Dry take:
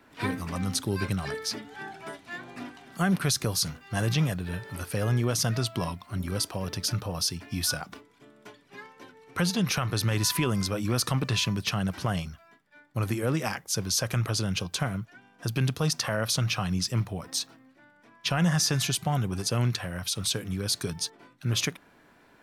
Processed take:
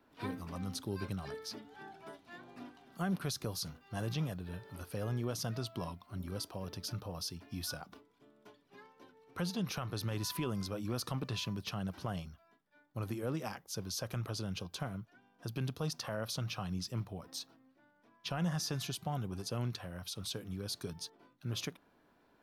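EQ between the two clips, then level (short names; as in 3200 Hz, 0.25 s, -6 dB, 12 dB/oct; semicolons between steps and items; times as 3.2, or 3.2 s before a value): graphic EQ 125/2000/8000 Hz -3/-7/-8 dB; -8.5 dB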